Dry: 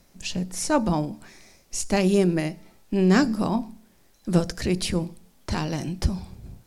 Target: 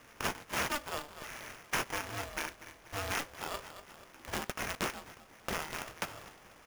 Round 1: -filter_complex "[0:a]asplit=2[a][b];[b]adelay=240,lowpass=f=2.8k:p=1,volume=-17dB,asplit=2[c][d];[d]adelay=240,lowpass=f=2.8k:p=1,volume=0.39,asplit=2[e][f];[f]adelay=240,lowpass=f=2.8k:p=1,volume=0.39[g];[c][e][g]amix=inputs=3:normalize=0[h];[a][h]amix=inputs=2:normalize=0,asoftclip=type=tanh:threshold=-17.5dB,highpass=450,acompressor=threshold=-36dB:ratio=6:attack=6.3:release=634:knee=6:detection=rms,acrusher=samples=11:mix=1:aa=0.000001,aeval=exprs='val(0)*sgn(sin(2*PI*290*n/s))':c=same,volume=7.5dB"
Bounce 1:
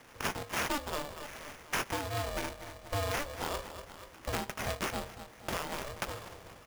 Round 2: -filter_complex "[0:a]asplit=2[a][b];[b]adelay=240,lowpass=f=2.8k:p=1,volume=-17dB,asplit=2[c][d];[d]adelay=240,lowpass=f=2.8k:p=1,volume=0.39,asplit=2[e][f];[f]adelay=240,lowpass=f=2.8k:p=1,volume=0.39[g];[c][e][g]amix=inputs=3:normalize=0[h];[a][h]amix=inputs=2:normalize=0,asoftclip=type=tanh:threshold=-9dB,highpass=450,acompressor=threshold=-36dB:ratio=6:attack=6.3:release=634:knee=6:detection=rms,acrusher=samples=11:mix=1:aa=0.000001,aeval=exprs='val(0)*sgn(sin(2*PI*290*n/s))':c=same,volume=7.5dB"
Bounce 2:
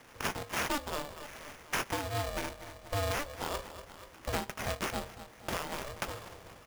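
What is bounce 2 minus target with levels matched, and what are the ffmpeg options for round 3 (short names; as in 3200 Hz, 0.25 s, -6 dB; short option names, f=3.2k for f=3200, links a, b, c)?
500 Hz band +3.5 dB
-filter_complex "[0:a]asplit=2[a][b];[b]adelay=240,lowpass=f=2.8k:p=1,volume=-17dB,asplit=2[c][d];[d]adelay=240,lowpass=f=2.8k:p=1,volume=0.39,asplit=2[e][f];[f]adelay=240,lowpass=f=2.8k:p=1,volume=0.39[g];[c][e][g]amix=inputs=3:normalize=0[h];[a][h]amix=inputs=2:normalize=0,asoftclip=type=tanh:threshold=-9dB,highpass=1.2k,acompressor=threshold=-36dB:ratio=6:attack=6.3:release=634:knee=6:detection=rms,acrusher=samples=11:mix=1:aa=0.000001,aeval=exprs='val(0)*sgn(sin(2*PI*290*n/s))':c=same,volume=7.5dB"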